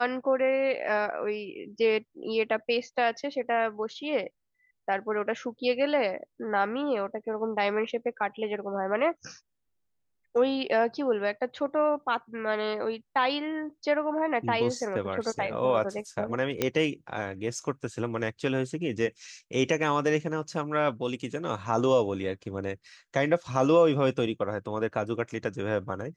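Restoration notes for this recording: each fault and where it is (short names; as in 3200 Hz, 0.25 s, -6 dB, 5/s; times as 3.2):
16.62 pop -10 dBFS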